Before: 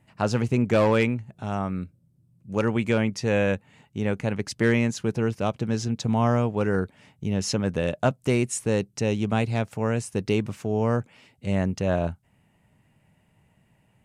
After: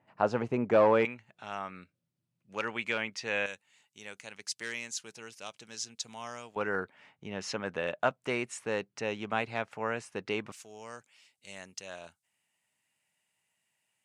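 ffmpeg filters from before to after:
-af "asetnsamples=n=441:p=0,asendcmd='1.05 bandpass f 2500;3.46 bandpass f 6900;6.56 bandpass f 1500;10.52 bandpass f 7200',bandpass=f=800:t=q:w=0.79:csg=0"

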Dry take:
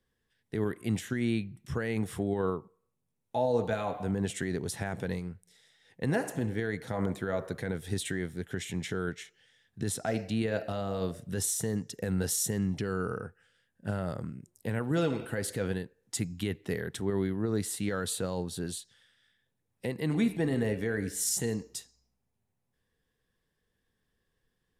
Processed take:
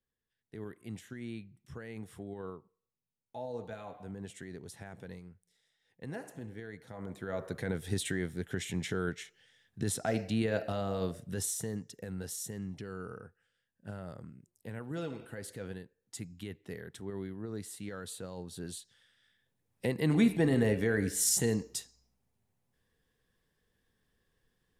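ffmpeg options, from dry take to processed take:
-af "volume=11.5dB,afade=t=in:st=7.03:d=0.67:silence=0.251189,afade=t=out:st=10.83:d=1.28:silence=0.334965,afade=t=in:st=18.35:d=1.54:silence=0.251189"

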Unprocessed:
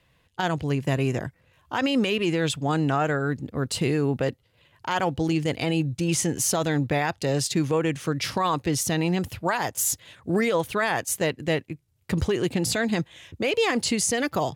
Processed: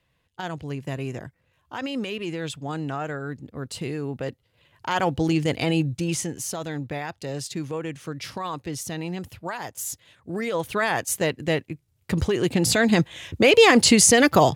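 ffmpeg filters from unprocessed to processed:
-af "volume=18dB,afade=t=in:st=4.14:d=0.94:silence=0.375837,afade=t=out:st=5.78:d=0.58:silence=0.354813,afade=t=in:st=10.36:d=0.46:silence=0.398107,afade=t=in:st=12.32:d=1.15:silence=0.398107"

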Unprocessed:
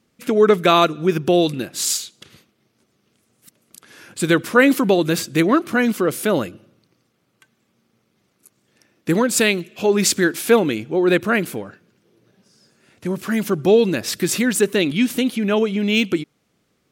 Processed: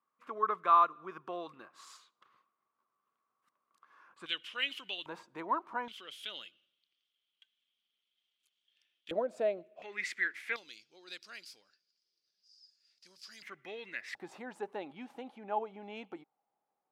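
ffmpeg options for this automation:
-af "asetnsamples=n=441:p=0,asendcmd='4.26 bandpass f 3000;5.06 bandpass f 940;5.88 bandpass f 3200;9.11 bandpass f 630;9.82 bandpass f 2000;10.56 bandpass f 4900;13.42 bandpass f 2000;14.15 bandpass f 820',bandpass=f=1.1k:t=q:w=10:csg=0"

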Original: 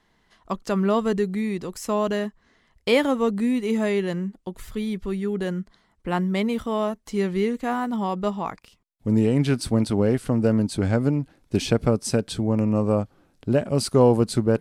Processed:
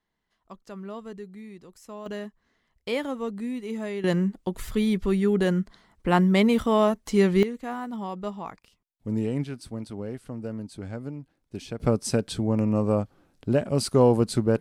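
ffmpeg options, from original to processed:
-af "asetnsamples=n=441:p=0,asendcmd='2.06 volume volume -9dB;4.04 volume volume 4dB;7.43 volume volume -7.5dB;9.44 volume volume -14dB;11.8 volume volume -2dB',volume=-16.5dB"

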